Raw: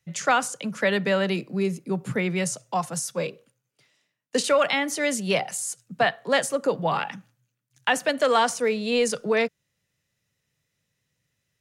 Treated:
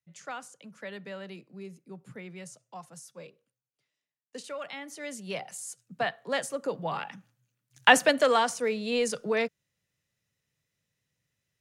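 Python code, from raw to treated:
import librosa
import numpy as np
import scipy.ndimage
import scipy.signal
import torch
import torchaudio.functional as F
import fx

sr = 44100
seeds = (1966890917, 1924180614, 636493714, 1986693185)

y = fx.gain(x, sr, db=fx.line((4.54, -18.0), (5.85, -8.0), (7.12, -8.0), (7.89, 5.0), (8.45, -5.0)))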